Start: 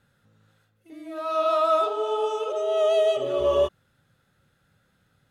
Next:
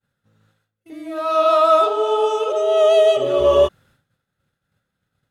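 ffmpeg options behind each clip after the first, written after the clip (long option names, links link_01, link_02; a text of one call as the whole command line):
ffmpeg -i in.wav -af "agate=range=-33dB:threshold=-55dB:ratio=3:detection=peak,volume=7.5dB" out.wav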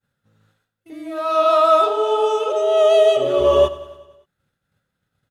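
ffmpeg -i in.wav -af "aecho=1:1:95|190|285|380|475|570:0.141|0.0848|0.0509|0.0305|0.0183|0.011" out.wav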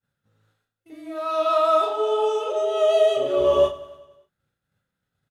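ffmpeg -i in.wav -filter_complex "[0:a]asplit=2[link_01][link_02];[link_02]adelay=35,volume=-6dB[link_03];[link_01][link_03]amix=inputs=2:normalize=0,volume=-6dB" out.wav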